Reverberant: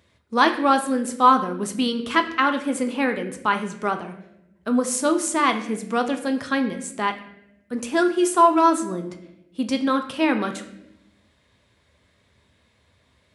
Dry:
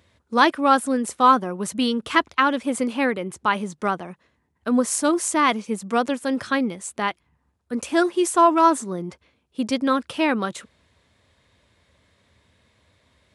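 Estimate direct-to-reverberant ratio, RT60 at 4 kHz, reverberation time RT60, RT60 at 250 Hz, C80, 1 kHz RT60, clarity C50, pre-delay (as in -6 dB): 6.0 dB, 0.65 s, 0.85 s, 1.3 s, 13.0 dB, 0.70 s, 10.5 dB, 5 ms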